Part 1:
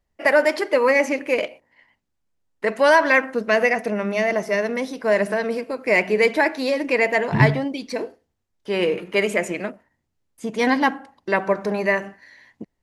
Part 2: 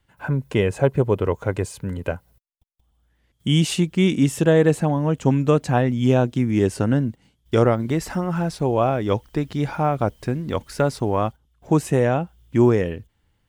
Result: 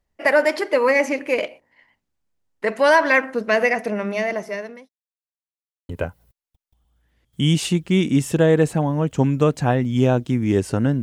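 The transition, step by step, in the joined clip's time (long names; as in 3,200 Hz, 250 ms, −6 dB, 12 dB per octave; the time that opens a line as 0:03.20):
part 1
0:03.75–0:04.89: fade out equal-power
0:04.89–0:05.89: silence
0:05.89: continue with part 2 from 0:01.96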